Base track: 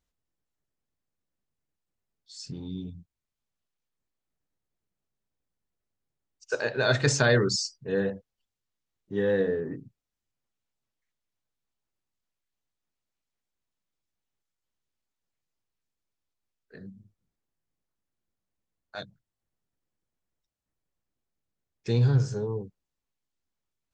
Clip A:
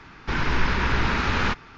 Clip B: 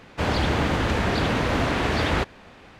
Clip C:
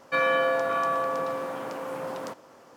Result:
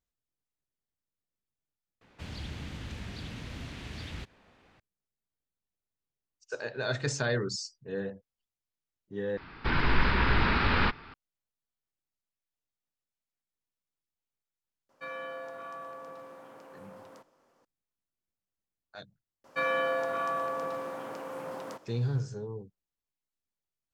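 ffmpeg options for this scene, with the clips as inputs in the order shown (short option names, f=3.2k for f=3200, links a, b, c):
-filter_complex "[3:a]asplit=2[a][b];[0:a]volume=-8dB[c];[2:a]acrossover=split=240|2200[d][e][f];[e]acompressor=threshold=-37dB:ratio=5:attack=1.7:release=111:knee=2.83:detection=peak[g];[d][g][f]amix=inputs=3:normalize=0[h];[1:a]aresample=11025,aresample=44100[i];[c]asplit=3[j][k][l];[j]atrim=end=2.014[m];[h]atrim=end=2.79,asetpts=PTS-STARTPTS,volume=-14.5dB[n];[k]atrim=start=4.796:end=9.374[o];[i]atrim=end=1.77,asetpts=PTS-STARTPTS,volume=-2.5dB[p];[l]atrim=start=11.136[q];[a]atrim=end=2.76,asetpts=PTS-STARTPTS,volume=-16.5dB,afade=t=in:d=0.004:c=hsin,afade=t=out:st=2.756:d=0.004:c=hsin,adelay=14890[r];[b]atrim=end=2.76,asetpts=PTS-STARTPTS,volume=-5.5dB,afade=t=in:d=0.004:c=hsin,afade=t=out:st=2.756:d=0.004:c=hsin,adelay=19440[s];[m][n]acrossfade=d=0.004:c1=hsin:c2=hsin[t];[t][o]acrossfade=d=0.004:c1=hsin:c2=hsin[u];[u][p]acrossfade=d=0.004:c1=hsin:c2=hsin[v];[v][q]acrossfade=d=0.004:c1=hsin:c2=hsin[w];[w][r][s]amix=inputs=3:normalize=0"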